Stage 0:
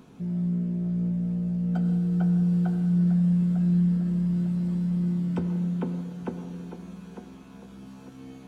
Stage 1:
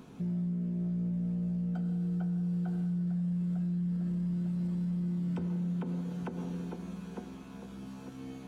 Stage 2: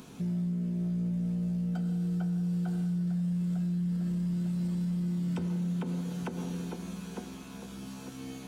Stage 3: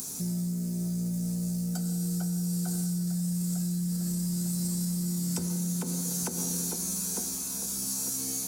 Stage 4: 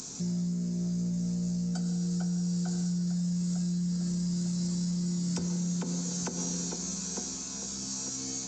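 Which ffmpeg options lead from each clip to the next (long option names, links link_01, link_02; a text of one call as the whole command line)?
ffmpeg -i in.wav -af "alimiter=level_in=4dB:limit=-24dB:level=0:latency=1:release=126,volume=-4dB" out.wav
ffmpeg -i in.wav -af "highshelf=frequency=2900:gain=11.5,volume=1.5dB" out.wav
ffmpeg -i in.wav -af "aexciter=amount=9:drive=8.6:freq=4700" out.wav
ffmpeg -i in.wav -af "aresample=16000,aresample=44100" out.wav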